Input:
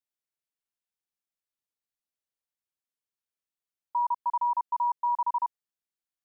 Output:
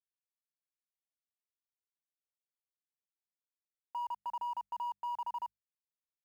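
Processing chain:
parametric band 1,100 Hz −14 dB 0.42 octaves
notch filter 1,100 Hz, Q 5.9
in parallel at −3 dB: soft clipping −39.5 dBFS, distortion −13 dB
on the sum: brickwall limiter −40 dBFS, peak gain reduction 11 dB
bit reduction 12 bits
mains-hum notches 50/100/150/200 Hz
level +6.5 dB

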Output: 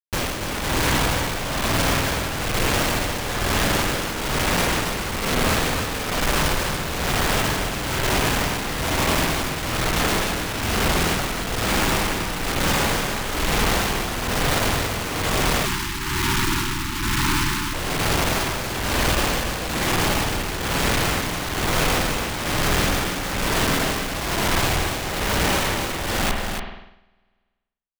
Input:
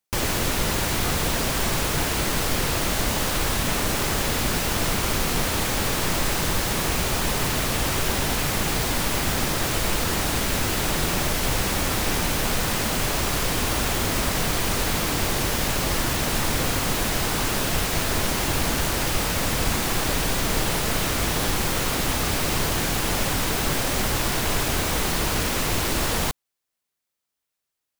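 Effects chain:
comparator with hysteresis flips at −28.5 dBFS
spring reverb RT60 1.2 s, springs 49 ms, chirp 75 ms, DRR 3.5 dB
amplitude tremolo 1.1 Hz, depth 69%
on a send: single-tap delay 284 ms −6.5 dB
on the sum: time-frequency box erased 0:15.66–0:17.74, 390–830 Hz
level +2.5 dB

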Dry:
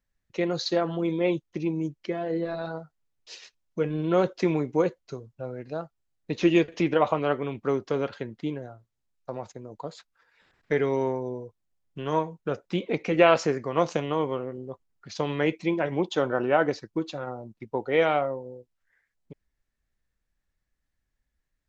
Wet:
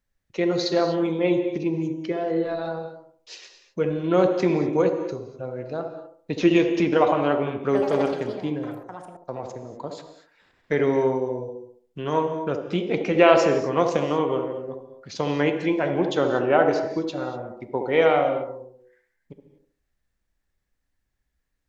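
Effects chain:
reverb whose tail is shaped and stops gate 270 ms flat, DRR 8 dB
0:07.63–0:09.68: delay with pitch and tempo change per echo 88 ms, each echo +6 semitones, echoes 2, each echo −6 dB
delay with a band-pass on its return 70 ms, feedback 36%, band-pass 450 Hz, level −4 dB
level +2 dB

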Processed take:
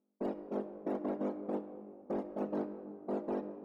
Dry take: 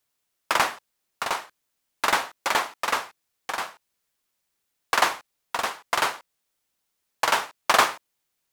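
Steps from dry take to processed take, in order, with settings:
frequency axis turned over on the octave scale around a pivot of 500 Hz
brickwall limiter −16.5 dBFS, peak gain reduction 9 dB
reversed playback
downward compressor 4 to 1, threshold −35 dBFS, peak gain reduction 12.5 dB
reversed playback
pitch vibrato 1.1 Hz 7.4 cents
low-pass that shuts in the quiet parts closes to 450 Hz
wrong playback speed 33 rpm record played at 78 rpm
on a send: convolution reverb RT60 2.1 s, pre-delay 3 ms, DRR 9 dB

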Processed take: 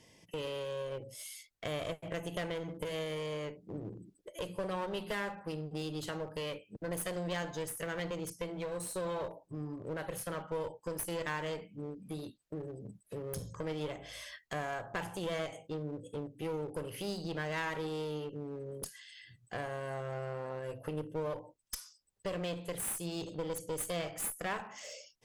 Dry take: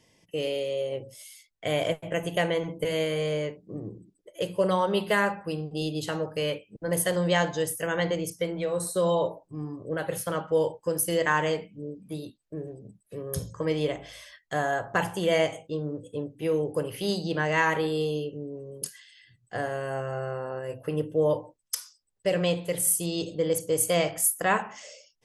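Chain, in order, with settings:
downward compressor 2 to 1, threshold −43 dBFS, peak gain reduction 13 dB
asymmetric clip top −42 dBFS
level +1.5 dB

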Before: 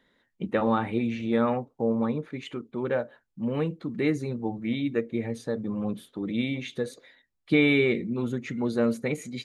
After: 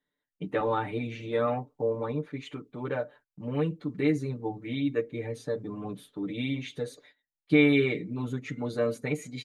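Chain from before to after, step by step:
noise gate −52 dBFS, range −16 dB
comb filter 6.8 ms, depth 94%
level −5 dB

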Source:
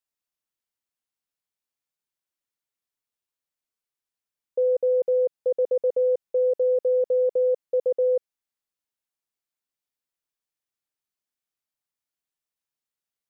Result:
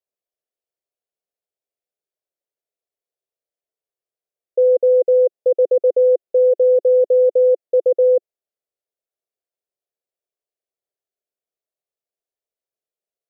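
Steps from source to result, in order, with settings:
flat-topped bell 510 Hz +15 dB 1.2 octaves
level −7 dB

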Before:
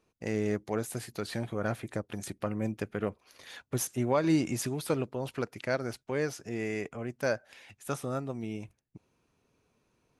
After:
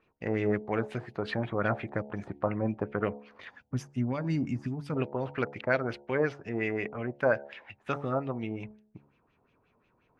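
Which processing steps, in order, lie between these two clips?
hum removal 71.11 Hz, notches 13
gain on a spectral selection 0:03.50–0:04.96, 300–4,500 Hz −12 dB
auto-filter low-pass sine 5.6 Hz 850–3,000 Hz
level +2 dB

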